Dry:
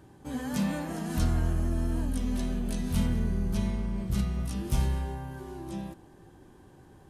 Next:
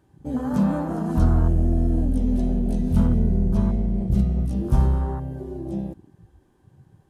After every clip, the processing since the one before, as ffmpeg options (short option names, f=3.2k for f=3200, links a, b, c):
-af "afwtdn=0.0126,volume=8.5dB"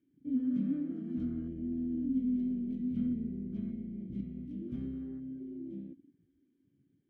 -filter_complex "[0:a]asplit=3[a][b][c];[a]bandpass=f=270:t=q:w=8,volume=0dB[d];[b]bandpass=f=2.29k:t=q:w=8,volume=-6dB[e];[c]bandpass=f=3.01k:t=q:w=8,volume=-9dB[f];[d][e][f]amix=inputs=3:normalize=0,highshelf=f=2.4k:g=-9.5,volume=-1.5dB"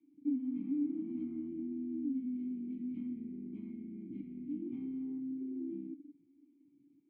-filter_complex "[0:a]acrossover=split=120|530[a][b][c];[a]acompressor=threshold=-53dB:ratio=4[d];[b]acompressor=threshold=-43dB:ratio=4[e];[c]acompressor=threshold=-57dB:ratio=4[f];[d][e][f]amix=inputs=3:normalize=0,asplit=3[g][h][i];[g]bandpass=f=300:t=q:w=8,volume=0dB[j];[h]bandpass=f=870:t=q:w=8,volume=-6dB[k];[i]bandpass=f=2.24k:t=q:w=8,volume=-9dB[l];[j][k][l]amix=inputs=3:normalize=0,volume=12dB"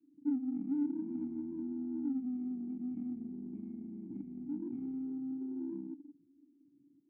-af "adynamicsmooth=sensitivity=2.5:basefreq=850,volume=1dB"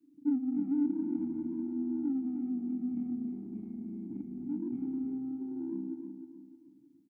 -af "aecho=1:1:308|616|924|1232:0.398|0.143|0.0516|0.0186,volume=3.5dB"